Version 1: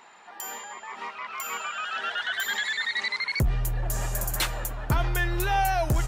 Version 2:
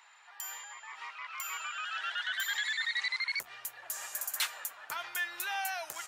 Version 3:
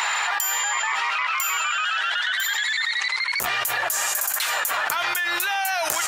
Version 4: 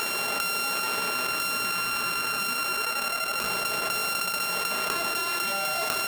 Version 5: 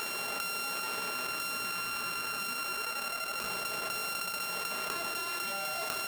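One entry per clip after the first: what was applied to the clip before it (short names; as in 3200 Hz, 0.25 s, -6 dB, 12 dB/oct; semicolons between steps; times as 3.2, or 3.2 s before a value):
HPF 1300 Hz 12 dB/oct; gain -4 dB
fast leveller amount 100%; gain +4.5 dB
sample sorter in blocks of 32 samples; reverb RT60 1.9 s, pre-delay 5 ms, DRR 3.5 dB; gain -4 dB
bit-crush 7-bit; gain -7.5 dB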